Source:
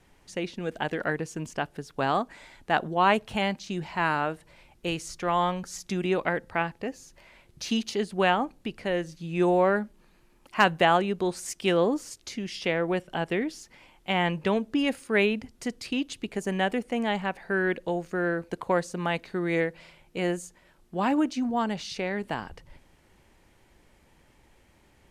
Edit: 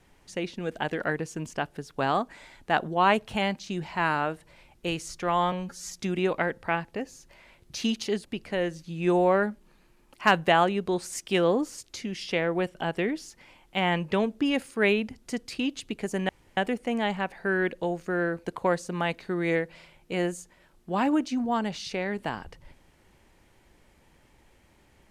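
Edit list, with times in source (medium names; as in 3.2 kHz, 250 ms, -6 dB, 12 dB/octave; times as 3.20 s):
5.52–5.78 s: stretch 1.5×
8.12–8.58 s: delete
16.62 s: insert room tone 0.28 s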